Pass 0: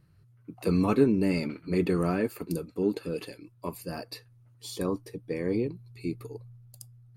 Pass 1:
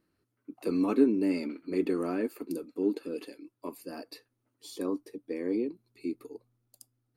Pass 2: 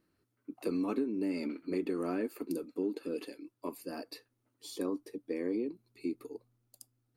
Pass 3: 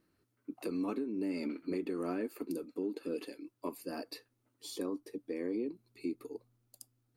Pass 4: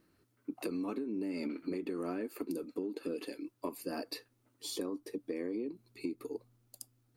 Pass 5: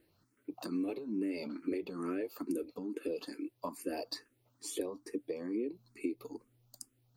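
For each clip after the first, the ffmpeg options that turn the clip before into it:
-af "lowshelf=f=190:t=q:w=3:g=-12,volume=0.501"
-af "acompressor=threshold=0.0355:ratio=8"
-af "alimiter=level_in=1.5:limit=0.0631:level=0:latency=1:release=368,volume=0.668,volume=1.12"
-af "acompressor=threshold=0.0126:ratio=6,volume=1.68"
-filter_complex "[0:a]asplit=2[s0][s1];[s1]afreqshift=2.3[s2];[s0][s2]amix=inputs=2:normalize=1,volume=1.41"

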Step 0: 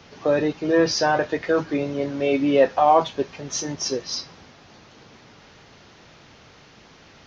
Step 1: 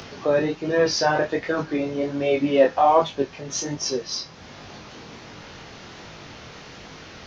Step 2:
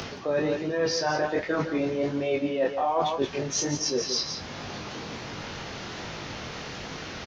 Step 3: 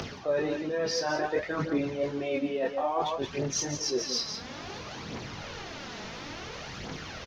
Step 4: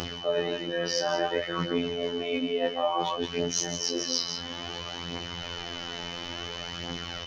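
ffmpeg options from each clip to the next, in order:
-af "acompressor=mode=upward:threshold=0.0251:ratio=2.5,flanger=delay=19.5:depth=6.3:speed=1.3,volume=1.41"
-af "aecho=1:1:155|171:0.141|0.282,areverse,acompressor=threshold=0.0398:ratio=5,areverse,volume=1.58"
-af "aphaser=in_gain=1:out_gain=1:delay=4.8:decay=0.46:speed=0.58:type=triangular,volume=0.631"
-af "aeval=exprs='val(0)+0.00891*sin(2*PI*3000*n/s)':c=same,afftfilt=real='hypot(re,im)*cos(PI*b)':imag='0':win_size=2048:overlap=0.75,volume=1.78"

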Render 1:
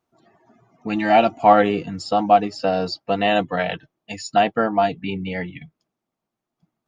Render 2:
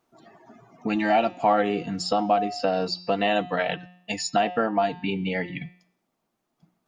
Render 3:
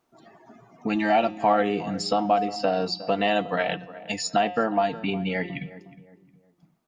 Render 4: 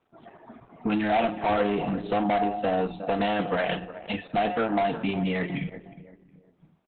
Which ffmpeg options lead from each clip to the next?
-af "equalizer=f=82:t=o:w=0.61:g=-14.5,bandreject=f=179.7:t=h:w=4,bandreject=f=359.4:t=h:w=4,bandreject=f=539.1:t=h:w=4,bandreject=f=718.8:t=h:w=4,bandreject=f=898.5:t=h:w=4,bandreject=f=1078.2:t=h:w=4,bandreject=f=1257.9:t=h:w=4,bandreject=f=1437.6:t=h:w=4,bandreject=f=1617.3:t=h:w=4,bandreject=f=1797:t=h:w=4,bandreject=f=1976.7:t=h:w=4,bandreject=f=2156.4:t=h:w=4,bandreject=f=2336.1:t=h:w=4,bandreject=f=2515.8:t=h:w=4,bandreject=f=2695.5:t=h:w=4,bandreject=f=2875.2:t=h:w=4,bandreject=f=3054.9:t=h:w=4,bandreject=f=3234.6:t=h:w=4,bandreject=f=3414.3:t=h:w=4,bandreject=f=3594:t=h:w=4,bandreject=f=3773.7:t=h:w=4,bandreject=f=3953.4:t=h:w=4,bandreject=f=4133.1:t=h:w=4,bandreject=f=4312.8:t=h:w=4,bandreject=f=4492.5:t=h:w=4,bandreject=f=4672.2:t=h:w=4,bandreject=f=4851.9:t=h:w=4,bandreject=f=5031.6:t=h:w=4,bandreject=f=5211.3:t=h:w=4,bandreject=f=5391:t=h:w=4,bandreject=f=5570.7:t=h:w=4,bandreject=f=5750.4:t=h:w=4,bandreject=f=5930.1:t=h:w=4,bandreject=f=6109.8:t=h:w=4,bandreject=f=6289.5:t=h:w=4,bandreject=f=6469.2:t=h:w=4,bandreject=f=6648.9:t=h:w=4,bandreject=f=6828.6:t=h:w=4,acompressor=threshold=0.02:ratio=2,volume=2"
-filter_complex "[0:a]asplit=2[s0][s1];[s1]adelay=361,lowpass=f=1200:p=1,volume=0.178,asplit=2[s2][s3];[s3]adelay=361,lowpass=f=1200:p=1,volume=0.38,asplit=2[s4][s5];[s5]adelay=361,lowpass=f=1200:p=1,volume=0.38[s6];[s0][s2][s4][s6]amix=inputs=4:normalize=0"
-filter_complex "[0:a]aresample=8000,asoftclip=type=tanh:threshold=0.075,aresample=44100,asplit=2[s0][s1];[s1]adelay=39,volume=0.251[s2];[s0][s2]amix=inputs=2:normalize=0,volume=1.58" -ar 48000 -c:a libopus -b:a 8k

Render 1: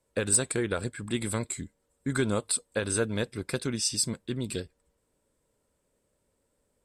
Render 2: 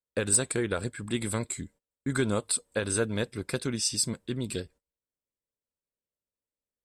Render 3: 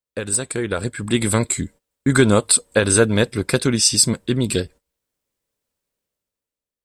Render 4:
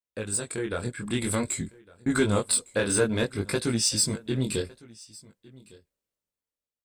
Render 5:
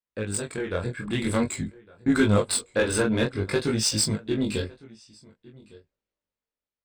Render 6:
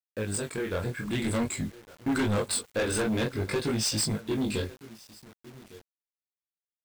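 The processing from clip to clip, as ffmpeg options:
-af "agate=range=0.0562:threshold=0.00251:ratio=16:detection=peak"
-af "dynaudnorm=f=150:g=11:m=3.98,volume=1.26"
-filter_complex "[0:a]flanger=delay=17.5:depth=7.2:speed=0.53,asplit=2[s0][s1];[s1]asoftclip=type=tanh:threshold=0.126,volume=0.631[s2];[s0][s2]amix=inputs=2:normalize=0,aecho=1:1:1157:0.0708,volume=0.376"
-af "flanger=delay=18.5:depth=4.4:speed=0.49,adynamicsmooth=sensitivity=4.5:basefreq=4400,volume=1.88"
-filter_complex "[0:a]asplit=2[s0][s1];[s1]acrusher=bits=4:mode=log:mix=0:aa=0.000001,volume=0.501[s2];[s0][s2]amix=inputs=2:normalize=0,asoftclip=type=tanh:threshold=0.106,acrusher=bits=7:mix=0:aa=0.000001,volume=0.668"

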